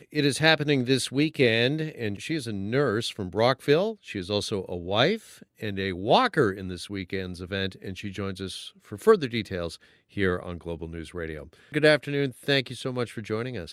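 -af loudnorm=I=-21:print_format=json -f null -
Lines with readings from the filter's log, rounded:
"input_i" : "-26.4",
"input_tp" : "-4.4",
"input_lra" : "3.4",
"input_thresh" : "-36.8",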